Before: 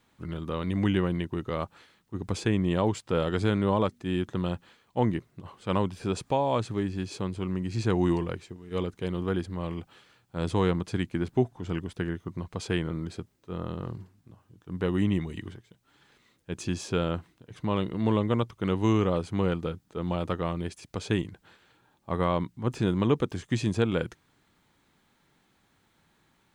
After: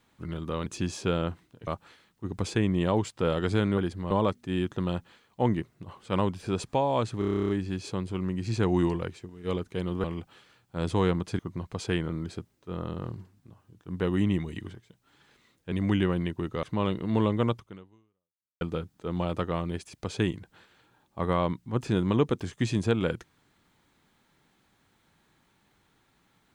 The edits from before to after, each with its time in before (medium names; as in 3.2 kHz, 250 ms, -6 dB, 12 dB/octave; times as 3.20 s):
0.66–1.57 s: swap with 16.53–17.54 s
6.76 s: stutter 0.03 s, 11 plays
9.31–9.64 s: move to 3.68 s
10.99–12.20 s: delete
18.49–19.52 s: fade out exponential